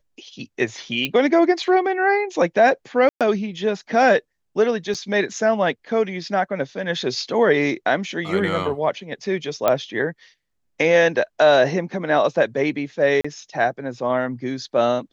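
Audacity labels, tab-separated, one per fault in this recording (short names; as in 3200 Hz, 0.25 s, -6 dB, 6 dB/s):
1.050000	1.050000	pop -9 dBFS
3.090000	3.210000	gap 0.117 s
4.940000	4.950000	gap 6.6 ms
9.680000	9.680000	pop -5 dBFS
13.210000	13.240000	gap 35 ms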